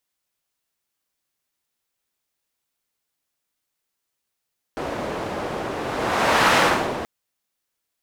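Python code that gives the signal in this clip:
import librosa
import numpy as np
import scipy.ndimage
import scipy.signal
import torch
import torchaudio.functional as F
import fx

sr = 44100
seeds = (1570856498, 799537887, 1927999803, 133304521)

y = fx.whoosh(sr, seeds[0], length_s=2.28, peak_s=1.79, rise_s=0.86, fall_s=0.44, ends_hz=550.0, peak_hz=1200.0, q=0.81, swell_db=12.0)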